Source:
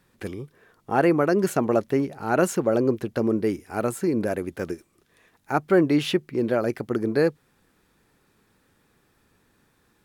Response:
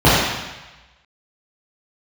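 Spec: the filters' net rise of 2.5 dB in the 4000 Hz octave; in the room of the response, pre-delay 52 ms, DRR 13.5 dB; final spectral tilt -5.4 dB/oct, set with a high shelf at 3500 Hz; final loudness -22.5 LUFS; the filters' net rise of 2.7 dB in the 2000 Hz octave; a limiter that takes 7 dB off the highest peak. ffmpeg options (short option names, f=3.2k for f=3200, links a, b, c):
-filter_complex "[0:a]equalizer=f=2k:t=o:g=4,highshelf=f=3.5k:g=-3.5,equalizer=f=4k:t=o:g=4,alimiter=limit=-13dB:level=0:latency=1,asplit=2[a][b];[1:a]atrim=start_sample=2205,adelay=52[c];[b][c]afir=irnorm=-1:irlink=0,volume=-42.5dB[d];[a][d]amix=inputs=2:normalize=0,volume=3dB"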